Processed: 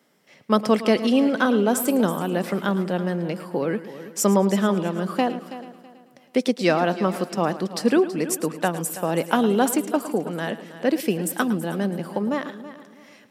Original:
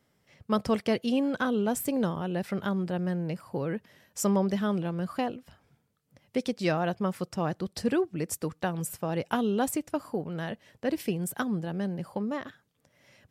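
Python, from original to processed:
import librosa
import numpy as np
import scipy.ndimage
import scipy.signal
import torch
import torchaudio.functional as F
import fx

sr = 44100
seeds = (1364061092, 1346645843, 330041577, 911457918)

y = scipy.signal.sosfilt(scipy.signal.butter(4, 190.0, 'highpass', fs=sr, output='sos'), x)
y = fx.echo_heads(y, sr, ms=109, heads='first and third', feedback_pct=44, wet_db=-15)
y = F.gain(torch.from_numpy(y), 8.0).numpy()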